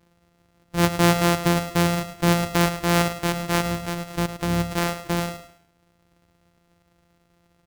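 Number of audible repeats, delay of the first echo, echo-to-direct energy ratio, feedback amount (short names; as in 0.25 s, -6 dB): 3, 0.106 s, -10.5 dB, 32%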